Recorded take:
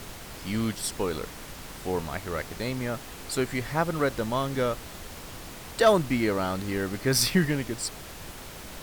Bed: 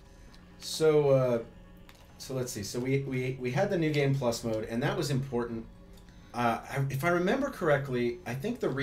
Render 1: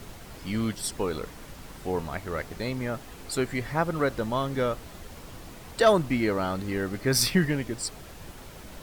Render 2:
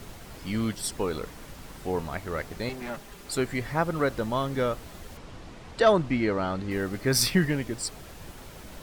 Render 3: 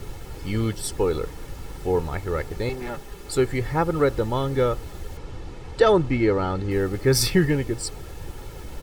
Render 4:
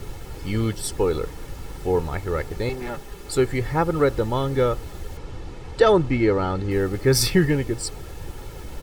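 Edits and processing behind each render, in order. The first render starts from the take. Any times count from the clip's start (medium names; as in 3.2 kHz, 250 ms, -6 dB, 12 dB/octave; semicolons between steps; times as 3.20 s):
noise reduction 6 dB, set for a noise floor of -42 dBFS
2.69–3.29 s: comb filter that takes the minimum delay 5 ms; 5.17–6.71 s: distance through air 76 m
bass shelf 500 Hz +7.5 dB; comb 2.3 ms, depth 53%
trim +1 dB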